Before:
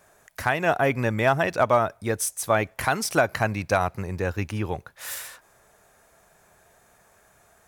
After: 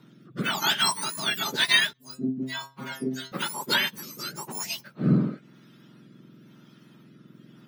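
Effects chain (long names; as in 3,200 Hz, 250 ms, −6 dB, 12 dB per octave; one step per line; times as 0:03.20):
frequency axis turned over on the octave scale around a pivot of 1,500 Hz
rotating-speaker cabinet horn 1 Hz
0:01.93–0:03.32: stiff-string resonator 130 Hz, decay 0.31 s, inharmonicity 0.002
level +4 dB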